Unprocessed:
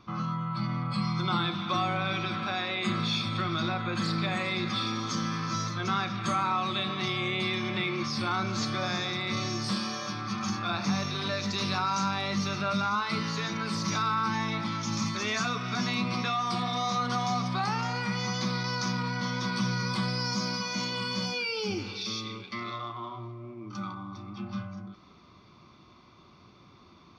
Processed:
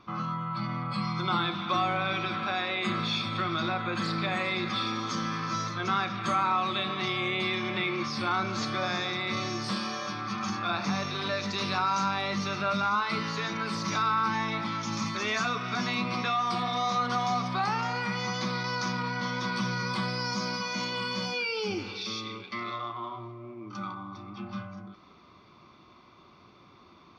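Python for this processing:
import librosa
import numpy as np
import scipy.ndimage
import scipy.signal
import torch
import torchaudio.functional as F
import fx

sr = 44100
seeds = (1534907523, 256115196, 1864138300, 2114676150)

y = fx.bass_treble(x, sr, bass_db=-6, treble_db=-6)
y = y * 10.0 ** (2.0 / 20.0)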